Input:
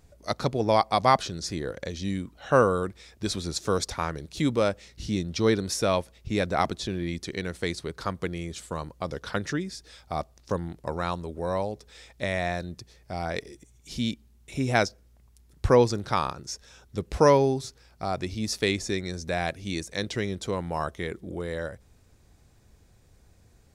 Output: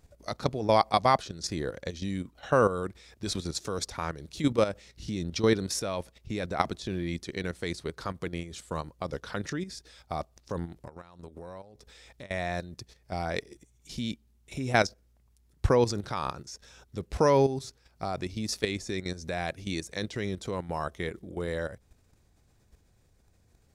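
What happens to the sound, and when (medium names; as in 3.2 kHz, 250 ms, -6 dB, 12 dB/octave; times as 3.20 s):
10.76–12.31 s: compression 20:1, threshold -38 dBFS
whole clip: level held to a coarse grid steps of 11 dB; trim +1.5 dB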